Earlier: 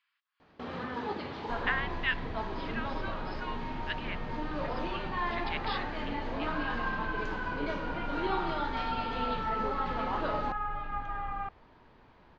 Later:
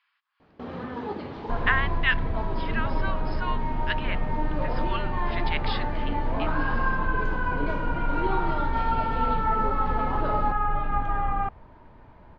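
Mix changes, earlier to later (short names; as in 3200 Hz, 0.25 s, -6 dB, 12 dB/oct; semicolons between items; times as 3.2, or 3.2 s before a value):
speech +9.5 dB; second sound +8.0 dB; master: add tilt shelf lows +5 dB, about 1100 Hz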